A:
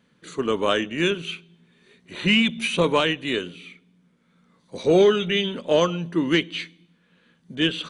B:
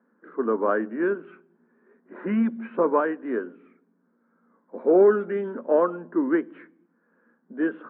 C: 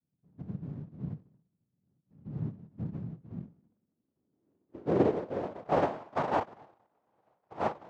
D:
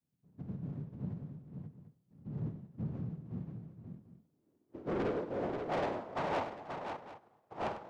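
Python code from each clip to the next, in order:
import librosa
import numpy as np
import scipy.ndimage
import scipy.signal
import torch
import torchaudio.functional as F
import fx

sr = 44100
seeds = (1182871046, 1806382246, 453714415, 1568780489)

y1 = scipy.signal.sosfilt(scipy.signal.cheby1(4, 1.0, [220.0, 1600.0], 'bandpass', fs=sr, output='sos'), x)
y2 = fx.chorus_voices(y1, sr, voices=4, hz=0.75, base_ms=29, depth_ms=4.0, mix_pct=25)
y2 = fx.noise_vocoder(y2, sr, seeds[0], bands=1)
y2 = fx.filter_sweep_lowpass(y2, sr, from_hz=160.0, to_hz=780.0, start_s=3.24, end_s=6.05, q=2.1)
y3 = 10.0 ** (-30.0 / 20.0) * np.tanh(y2 / 10.0 ** (-30.0 / 20.0))
y3 = fx.echo_multitap(y3, sr, ms=(51, 98, 483, 533, 744), db=(-11.5, -11.5, -19.0, -6.0, -15.5))
y3 = y3 * 10.0 ** (-1.0 / 20.0)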